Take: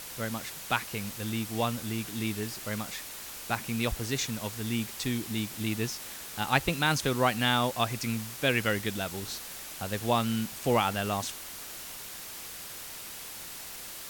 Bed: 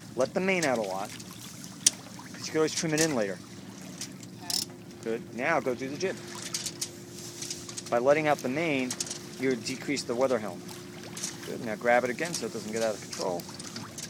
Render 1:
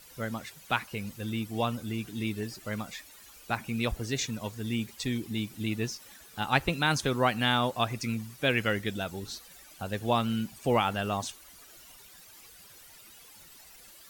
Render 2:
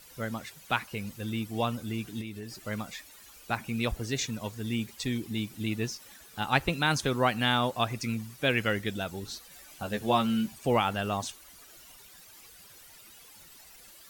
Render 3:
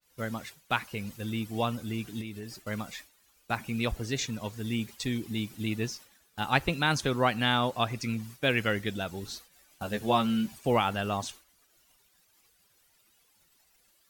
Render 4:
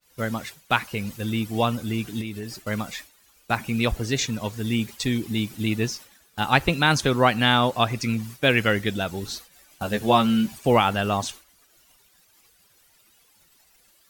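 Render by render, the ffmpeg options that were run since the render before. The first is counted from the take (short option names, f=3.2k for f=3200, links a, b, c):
-af "afftdn=nr=14:nf=-42"
-filter_complex "[0:a]asettb=1/sr,asplit=3[a][b][c];[a]atrim=end=2.214[d];[b]atrim=start=2.21:end=2.64,asetpts=PTS-STARTPTS,afade=t=in:d=0.004:c=qsin,afade=t=out:st=0.426:d=0.004:c=qsin,acompressor=threshold=-38dB:ratio=3:attack=3.2:release=140:knee=1:detection=peak[e];[c]atrim=start=2.636[f];[d][e]acrossfade=d=0.004:c1=hsin:c2=qsin[g];[g][f]acrossfade=d=0.004:c1=qsin:c2=hsin,asettb=1/sr,asplit=3[h][i][j];[h]atrim=end=9.514[k];[i]atrim=start=9.51:end=10.55,asetpts=PTS-STARTPTS,afade=t=in:d=0.004:c=qsin,afade=t=out:st=1.036:d=0.004:c=qsin,asplit=2[l][m];[m]adelay=14,volume=-4dB[n];[l][n]amix=inputs=2:normalize=0,atrim=end_sample=45864[o];[j]atrim=start=10.546[p];[k][o]acrossfade=d=0.004:c1=hsin:c2=qsin[q];[q][p]acrossfade=d=0.004:c1=qsin:c2=hsin"
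-af "agate=range=-33dB:threshold=-42dB:ratio=3:detection=peak,adynamicequalizer=threshold=0.00355:dfrequency=6700:dqfactor=0.7:tfrequency=6700:tqfactor=0.7:attack=5:release=100:ratio=0.375:range=2:mode=cutabove:tftype=highshelf"
-af "volume=7dB,alimiter=limit=-2dB:level=0:latency=1"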